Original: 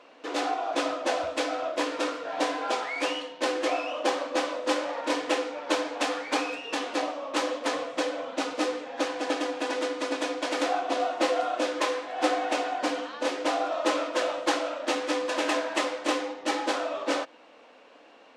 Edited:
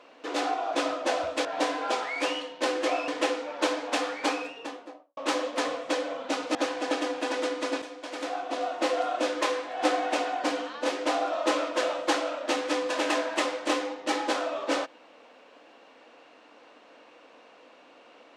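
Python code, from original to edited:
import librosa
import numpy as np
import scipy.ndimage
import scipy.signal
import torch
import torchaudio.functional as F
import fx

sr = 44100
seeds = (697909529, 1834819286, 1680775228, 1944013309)

y = fx.studio_fade_out(x, sr, start_s=6.29, length_s=0.96)
y = fx.edit(y, sr, fx.cut(start_s=1.45, length_s=0.8),
    fx.cut(start_s=3.88, length_s=1.28),
    fx.cut(start_s=8.63, length_s=0.31),
    fx.fade_in_from(start_s=10.21, length_s=1.35, floor_db=-13.0), tone=tone)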